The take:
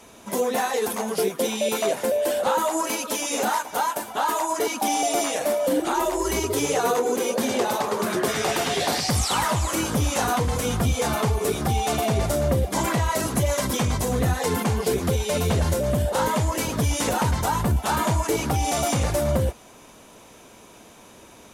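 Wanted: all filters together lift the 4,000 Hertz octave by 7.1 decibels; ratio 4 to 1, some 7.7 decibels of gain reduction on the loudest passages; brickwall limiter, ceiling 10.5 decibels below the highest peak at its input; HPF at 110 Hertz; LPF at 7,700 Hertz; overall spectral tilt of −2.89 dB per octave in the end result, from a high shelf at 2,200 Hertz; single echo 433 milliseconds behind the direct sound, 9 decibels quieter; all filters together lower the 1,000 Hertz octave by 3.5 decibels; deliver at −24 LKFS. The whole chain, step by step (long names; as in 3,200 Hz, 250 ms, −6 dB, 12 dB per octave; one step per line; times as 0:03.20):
high-pass filter 110 Hz
low-pass filter 7,700 Hz
parametric band 1,000 Hz −6 dB
high-shelf EQ 2,200 Hz +7 dB
parametric band 4,000 Hz +3 dB
downward compressor 4 to 1, threshold −28 dBFS
brickwall limiter −26.5 dBFS
single-tap delay 433 ms −9 dB
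level +10.5 dB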